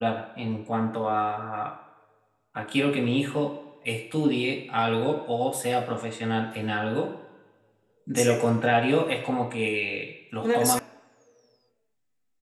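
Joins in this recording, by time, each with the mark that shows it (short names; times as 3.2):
10.79 sound cut off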